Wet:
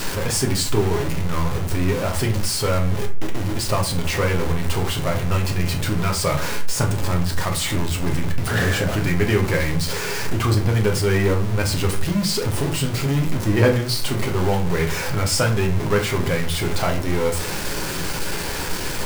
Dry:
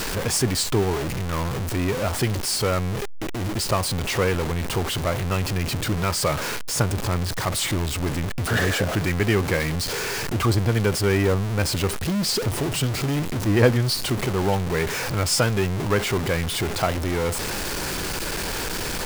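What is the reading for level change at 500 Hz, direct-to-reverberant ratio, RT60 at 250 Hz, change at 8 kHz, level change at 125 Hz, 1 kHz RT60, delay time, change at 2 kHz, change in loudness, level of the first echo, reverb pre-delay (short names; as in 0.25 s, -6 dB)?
+1.5 dB, 2.0 dB, 0.50 s, +0.5 dB, +3.0 dB, 0.35 s, none, +1.5 dB, +1.5 dB, none, 7 ms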